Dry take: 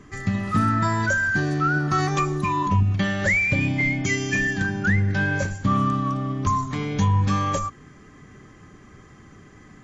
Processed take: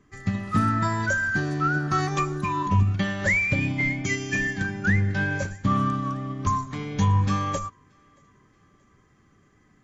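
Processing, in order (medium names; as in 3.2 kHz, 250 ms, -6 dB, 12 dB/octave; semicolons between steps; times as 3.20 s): on a send: thinning echo 628 ms, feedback 53%, high-pass 420 Hz, level -22 dB; on the sum: upward expansion 1.5:1, over -42 dBFS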